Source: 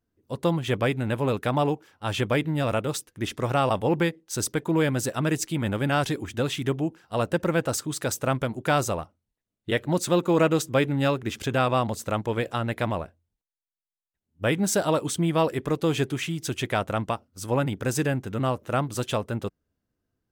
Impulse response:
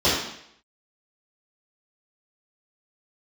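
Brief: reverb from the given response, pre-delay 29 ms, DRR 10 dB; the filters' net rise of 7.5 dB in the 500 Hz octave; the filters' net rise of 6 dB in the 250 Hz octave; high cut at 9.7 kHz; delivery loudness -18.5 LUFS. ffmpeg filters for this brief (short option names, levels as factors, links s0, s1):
-filter_complex "[0:a]lowpass=9700,equalizer=f=250:t=o:g=5.5,equalizer=f=500:t=o:g=7.5,asplit=2[s0][s1];[1:a]atrim=start_sample=2205,adelay=29[s2];[s1][s2]afir=irnorm=-1:irlink=0,volume=0.0355[s3];[s0][s3]amix=inputs=2:normalize=0,volume=1.19"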